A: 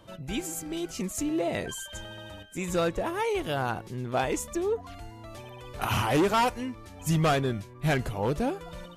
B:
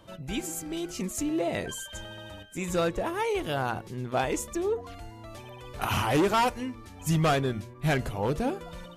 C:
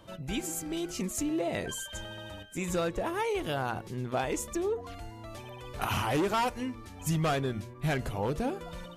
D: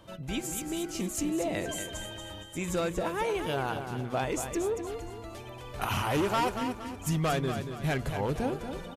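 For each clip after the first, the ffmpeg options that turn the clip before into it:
ffmpeg -i in.wav -af "bandreject=frequency=117.8:width_type=h:width=4,bandreject=frequency=235.6:width_type=h:width=4,bandreject=frequency=353.4:width_type=h:width=4,bandreject=frequency=471.2:width_type=h:width=4,bandreject=frequency=589:width_type=h:width=4" out.wav
ffmpeg -i in.wav -af "acompressor=threshold=-29dB:ratio=2" out.wav
ffmpeg -i in.wav -af "aecho=1:1:233|466|699|932|1165:0.398|0.159|0.0637|0.0255|0.0102" out.wav

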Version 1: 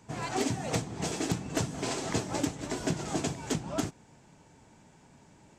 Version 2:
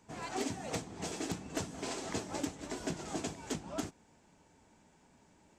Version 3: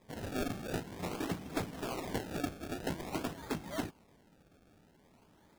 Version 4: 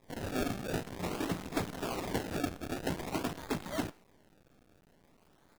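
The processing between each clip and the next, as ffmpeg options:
ffmpeg -i in.wav -af "equalizer=frequency=130:width=3.4:gain=-10.5,volume=-6dB" out.wav
ffmpeg -i in.wav -af "acrusher=samples=30:mix=1:aa=0.000001:lfo=1:lforange=30:lforate=0.49,volume=1dB" out.wav
ffmpeg -i in.wav -filter_complex "[0:a]asplit=2[link_01][link_02];[link_02]adelay=110,highpass=300,lowpass=3400,asoftclip=type=hard:threshold=-32dB,volume=-18dB[link_03];[link_01][link_03]amix=inputs=2:normalize=0,acrusher=bits=8:dc=4:mix=0:aa=0.000001,volume=2dB" out.wav

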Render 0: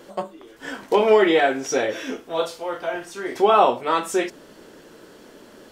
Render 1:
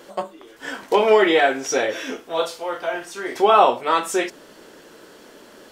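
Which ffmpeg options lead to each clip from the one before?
ffmpeg -i in.wav -af "lowshelf=frequency=330:gain=-7.5,volume=3dB" out.wav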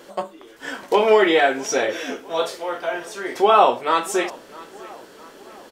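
ffmpeg -i in.wav -filter_complex "[0:a]asplit=2[link_01][link_02];[link_02]adelay=656,lowpass=frequency=4000:poles=1,volume=-20.5dB,asplit=2[link_03][link_04];[link_04]adelay=656,lowpass=frequency=4000:poles=1,volume=0.53,asplit=2[link_05][link_06];[link_06]adelay=656,lowpass=frequency=4000:poles=1,volume=0.53,asplit=2[link_07][link_08];[link_08]adelay=656,lowpass=frequency=4000:poles=1,volume=0.53[link_09];[link_01][link_03][link_05][link_07][link_09]amix=inputs=5:normalize=0" out.wav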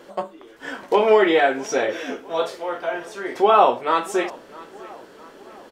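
ffmpeg -i in.wav -af "highshelf=frequency=3600:gain=-8" out.wav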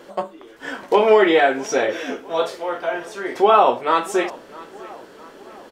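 ffmpeg -i in.wav -af "alimiter=level_in=5dB:limit=-1dB:release=50:level=0:latency=1,volume=-3dB" out.wav

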